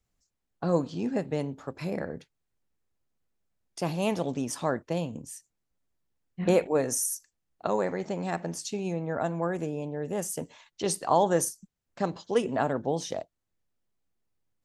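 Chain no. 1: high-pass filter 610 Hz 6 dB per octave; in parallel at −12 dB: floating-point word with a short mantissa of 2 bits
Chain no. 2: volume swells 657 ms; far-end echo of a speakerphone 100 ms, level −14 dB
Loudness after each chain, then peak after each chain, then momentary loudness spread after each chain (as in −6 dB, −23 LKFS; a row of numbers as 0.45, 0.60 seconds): −31.5, −35.0 LKFS; −10.0, −16.0 dBFS; 14, 21 LU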